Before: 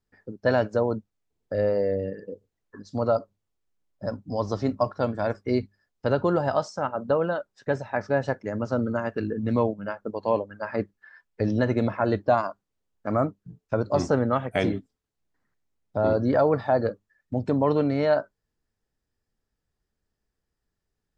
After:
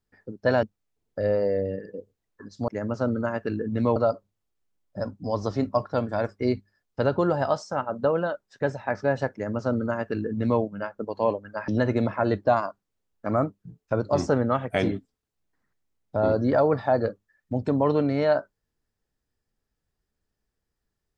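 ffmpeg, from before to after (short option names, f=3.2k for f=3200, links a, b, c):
-filter_complex "[0:a]asplit=5[a][b][c][d][e];[a]atrim=end=0.632[f];[b]atrim=start=0.968:end=3.022[g];[c]atrim=start=8.388:end=9.672[h];[d]atrim=start=3.018:end=10.742[i];[e]atrim=start=11.488[j];[f][g]acrossfade=d=0.004:c1=hsin:c2=hsin[k];[k][h]acrossfade=d=0.004:c1=hsin:c2=hsin[l];[l][i]acrossfade=d=0.004:c1=hsin:c2=hsin[m];[m][j]acrossfade=d=0.004:c1=hsin:c2=hsin"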